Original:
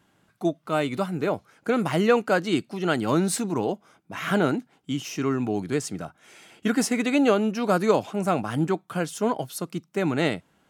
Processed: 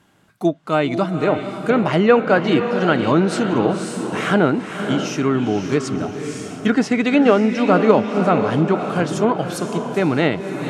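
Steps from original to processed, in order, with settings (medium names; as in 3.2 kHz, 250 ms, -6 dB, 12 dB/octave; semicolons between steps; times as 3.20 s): echo that smears into a reverb 527 ms, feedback 42%, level -7 dB; low-pass that closes with the level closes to 2.9 kHz, closed at -18 dBFS; trim +6.5 dB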